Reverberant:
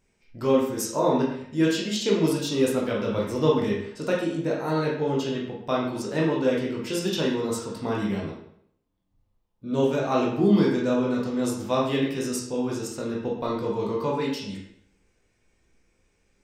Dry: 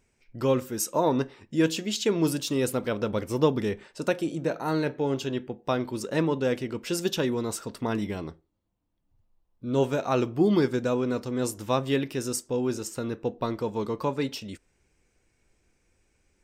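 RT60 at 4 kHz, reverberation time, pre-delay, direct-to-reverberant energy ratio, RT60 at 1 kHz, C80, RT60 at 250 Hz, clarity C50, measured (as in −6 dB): 0.60 s, 0.70 s, 15 ms, −3.5 dB, 0.65 s, 6.5 dB, 0.65 s, 3.0 dB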